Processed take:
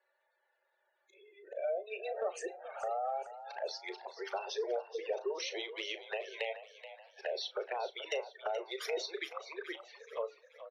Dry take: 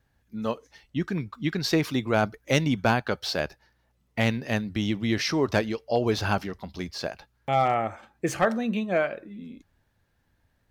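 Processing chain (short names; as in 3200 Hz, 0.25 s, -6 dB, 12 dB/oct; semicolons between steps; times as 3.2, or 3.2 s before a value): whole clip reversed; steep high-pass 380 Hz 96 dB/oct; spectral gate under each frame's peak -15 dB strong; compressor 5:1, threshold -33 dBFS, peak gain reduction 14 dB; envelope flanger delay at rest 3.5 ms, full sweep at -33.5 dBFS; doubler 36 ms -13 dB; frequency-shifting echo 0.428 s, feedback 43%, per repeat +49 Hz, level -13 dB; on a send at -21 dB: reverb RT60 0.35 s, pre-delay 3 ms; on the sum: gain +1 dB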